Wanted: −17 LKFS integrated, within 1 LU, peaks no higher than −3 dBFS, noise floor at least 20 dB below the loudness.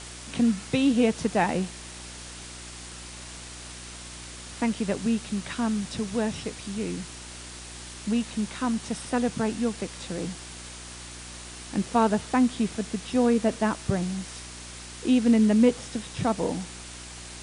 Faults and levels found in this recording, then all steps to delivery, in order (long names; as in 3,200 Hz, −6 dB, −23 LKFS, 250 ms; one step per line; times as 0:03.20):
mains hum 60 Hz; hum harmonics up to 360 Hz; level of the hum −44 dBFS; background noise floor −42 dBFS; target noise floor −47 dBFS; integrated loudness −26.5 LKFS; sample peak −9.5 dBFS; target loudness −17.0 LKFS
→ hum removal 60 Hz, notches 6
broadband denoise 6 dB, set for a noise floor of −42 dBFS
level +9.5 dB
brickwall limiter −3 dBFS